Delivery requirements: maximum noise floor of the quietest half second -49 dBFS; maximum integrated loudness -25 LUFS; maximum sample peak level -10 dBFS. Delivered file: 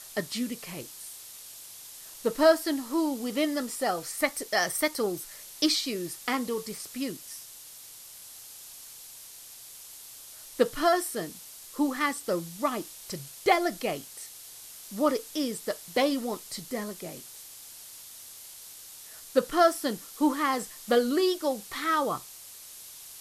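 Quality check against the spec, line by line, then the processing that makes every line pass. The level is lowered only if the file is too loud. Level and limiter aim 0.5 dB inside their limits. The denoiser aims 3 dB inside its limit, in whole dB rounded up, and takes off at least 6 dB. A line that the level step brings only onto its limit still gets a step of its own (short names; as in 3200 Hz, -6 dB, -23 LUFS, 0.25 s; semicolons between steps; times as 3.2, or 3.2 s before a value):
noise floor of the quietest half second -47 dBFS: fail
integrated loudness -28.5 LUFS: OK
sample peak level -8.5 dBFS: fail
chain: denoiser 6 dB, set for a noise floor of -47 dBFS; limiter -10.5 dBFS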